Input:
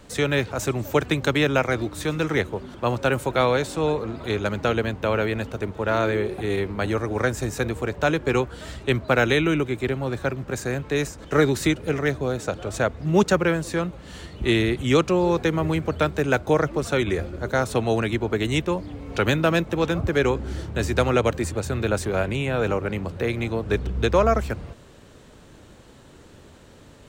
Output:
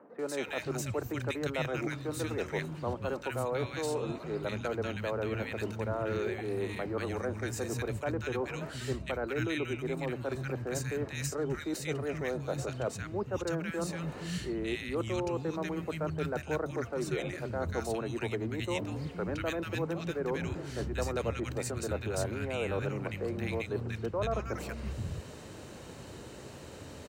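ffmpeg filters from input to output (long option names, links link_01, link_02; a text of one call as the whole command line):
ffmpeg -i in.wav -filter_complex "[0:a]highpass=79,bandreject=frequency=3400:width=9.6,areverse,acompressor=threshold=-35dB:ratio=5,areverse,acrossover=split=220|1400[link_01][link_02][link_03];[link_03]adelay=190[link_04];[link_01]adelay=470[link_05];[link_05][link_02][link_04]amix=inputs=3:normalize=0,volume=4dB" out.wav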